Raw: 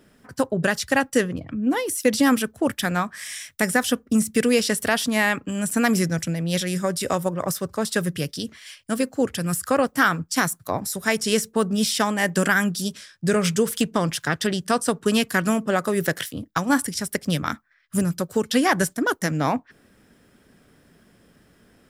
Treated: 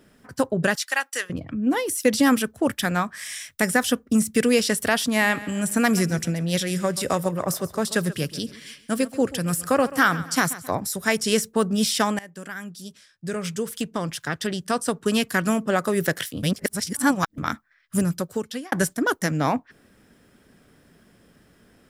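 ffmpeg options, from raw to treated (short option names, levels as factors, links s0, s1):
-filter_complex "[0:a]asettb=1/sr,asplit=3[s0][s1][s2];[s0]atrim=end=0.754[s3];[s1]atrim=start=0.75:end=1.3,asetpts=PTS-STARTPTS,afade=t=in:d=0.004:c=qsin,afade=t=out:st=0.546:d=0.004:c=qsin,highpass=1100[s4];[s2]atrim=start=1.296[s5];[s3][s4]acrossfade=d=0.004:c1=hsin:c2=qsin[s6];[s6][s5]acrossfade=d=0.004:c1=qsin:c2=hsin,asettb=1/sr,asplit=3[s7][s8][s9];[s7]atrim=end=5.084[s10];[s8]atrim=start=5.08:end=10.75,asetpts=PTS-STARTPTS,afade=t=in:d=0.004:c=qsin,afade=t=out:st=5.666:d=0.004:c=qsin,aecho=1:1:134|268|402|536:0.15|0.0628|0.0264|0.0111,atrim=end_sample=250047[s11];[s9]atrim=start=10.746[s12];[s10][s11]acrossfade=d=0.004:c1=hsin:c2=qsin[s13];[s13][s12]acrossfade=d=0.004:c1=qsin:c2=hsin,asplit=5[s14][s15][s16][s17][s18];[s14]atrim=end=12.19,asetpts=PTS-STARTPTS,afade=t=out:st=12.186:d=0.004:c=hsin:silence=0.0794328[s19];[s15]atrim=start=12.19:end=16.432,asetpts=PTS-STARTPTS,afade=t=in:d=3.63:silence=0.0794328[s20];[s16]atrim=start=16.428:end=17.382,asetpts=PTS-STARTPTS,areverse[s21];[s17]atrim=start=17.378:end=18.72,asetpts=PTS-STARTPTS,afade=t=out:st=0.742:d=0.6[s22];[s18]atrim=start=18.72,asetpts=PTS-STARTPTS,afade=t=in:d=0.004:c=hsin[s23];[s19][s20]concat=n=2:v=0:a=1[s24];[s24][s21]acrossfade=d=0.004:c1=hsin:c2=hsin[s25];[s22][s23]concat=n=2:v=0:a=1[s26];[s25][s26]acrossfade=d=0.004:c1=hsin:c2=hsin"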